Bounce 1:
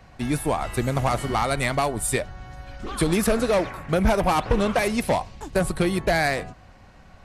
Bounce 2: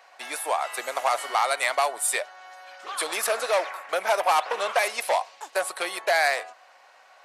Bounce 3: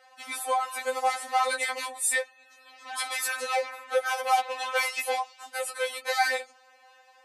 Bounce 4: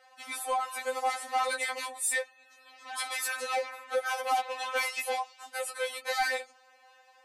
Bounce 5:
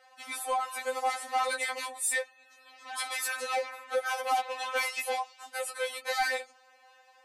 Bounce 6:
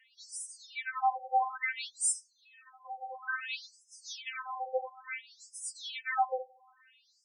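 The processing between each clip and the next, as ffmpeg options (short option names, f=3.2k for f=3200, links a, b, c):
-af "highpass=f=600:w=0.5412,highpass=f=600:w=1.3066,volume=1.5dB"
-af "afreqshift=-13,afftfilt=real='re*3.46*eq(mod(b,12),0)':imag='im*3.46*eq(mod(b,12),0)':win_size=2048:overlap=0.75"
-af "asoftclip=type=tanh:threshold=-17dB,volume=-2.5dB"
-af anull
-af "afftfilt=real='re*between(b*sr/1024,630*pow(7200/630,0.5+0.5*sin(2*PI*0.58*pts/sr))/1.41,630*pow(7200/630,0.5+0.5*sin(2*PI*0.58*pts/sr))*1.41)':imag='im*between(b*sr/1024,630*pow(7200/630,0.5+0.5*sin(2*PI*0.58*pts/sr))/1.41,630*pow(7200/630,0.5+0.5*sin(2*PI*0.58*pts/sr))*1.41)':win_size=1024:overlap=0.75,volume=2.5dB"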